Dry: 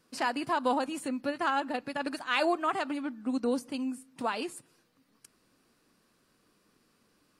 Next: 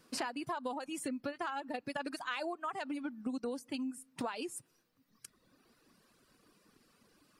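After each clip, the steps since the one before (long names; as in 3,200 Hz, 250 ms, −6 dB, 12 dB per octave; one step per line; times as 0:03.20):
reverb reduction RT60 1.3 s
downward compressor 10 to 1, threshold −39 dBFS, peak gain reduction 16 dB
level +4 dB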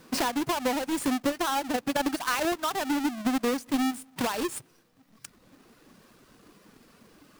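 each half-wave held at its own peak
harmonic and percussive parts rebalanced harmonic +4 dB
level +4.5 dB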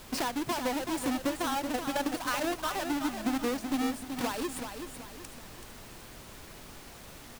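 background noise pink −44 dBFS
repeating echo 379 ms, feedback 40%, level −7.5 dB
level −4.5 dB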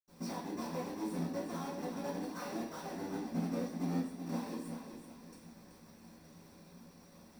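sub-harmonics by changed cycles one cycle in 3, muted
convolution reverb, pre-delay 76 ms
level −1.5 dB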